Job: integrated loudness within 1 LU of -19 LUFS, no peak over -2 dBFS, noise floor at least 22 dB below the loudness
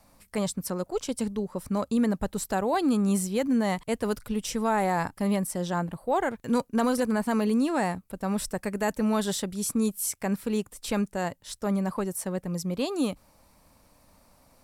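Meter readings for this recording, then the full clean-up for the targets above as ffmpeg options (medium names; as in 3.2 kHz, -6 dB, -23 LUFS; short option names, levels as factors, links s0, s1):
loudness -28.0 LUFS; peak level -13.0 dBFS; loudness target -19.0 LUFS
-> -af "volume=2.82"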